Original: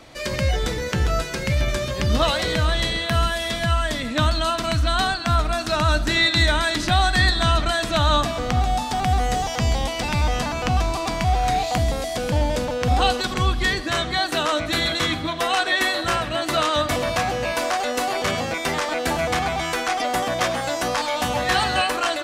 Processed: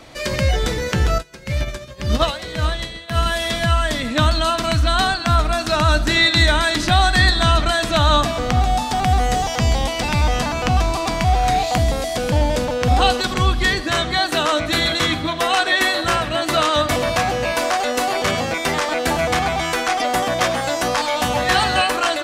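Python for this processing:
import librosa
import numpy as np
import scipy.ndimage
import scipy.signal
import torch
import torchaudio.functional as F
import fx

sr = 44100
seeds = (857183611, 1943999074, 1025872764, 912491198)

y = fx.upward_expand(x, sr, threshold_db=-31.0, expansion=2.5, at=(1.18, 3.26))
y = F.gain(torch.from_numpy(y), 3.5).numpy()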